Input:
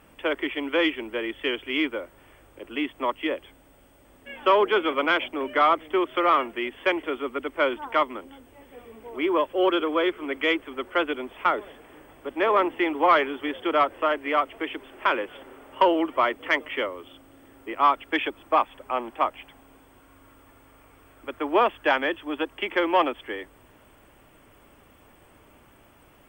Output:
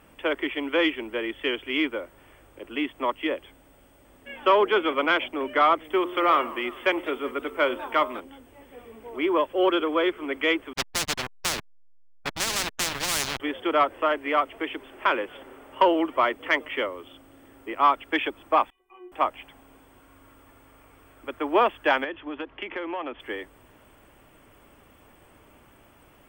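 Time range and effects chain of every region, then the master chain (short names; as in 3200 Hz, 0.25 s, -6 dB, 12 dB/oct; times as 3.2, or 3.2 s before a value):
5.84–8.2 high shelf 8700 Hz +8 dB + de-hum 88.83 Hz, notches 15 + warbling echo 0.195 s, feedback 60%, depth 186 cents, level -20 dB
10.73–13.4 high shelf 4200 Hz -8 dB + backlash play -26 dBFS + spectral compressor 10:1
18.7–19.12 fixed phaser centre 960 Hz, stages 8 + metallic resonator 360 Hz, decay 0.41 s, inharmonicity 0.008
22.04–23.2 LPF 3300 Hz 24 dB/oct + compressor 5:1, threshold -29 dBFS
whole clip: dry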